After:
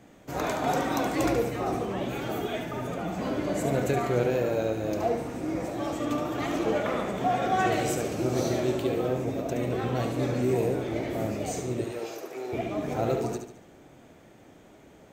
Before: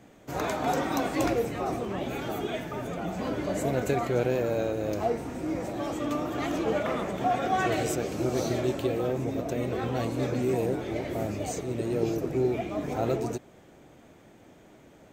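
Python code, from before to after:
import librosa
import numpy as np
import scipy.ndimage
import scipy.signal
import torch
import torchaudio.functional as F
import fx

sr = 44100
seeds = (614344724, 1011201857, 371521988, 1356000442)

y = fx.highpass(x, sr, hz=670.0, slope=12, at=(11.84, 12.53))
y = fx.echo_feedback(y, sr, ms=72, feedback_pct=44, wet_db=-7.0)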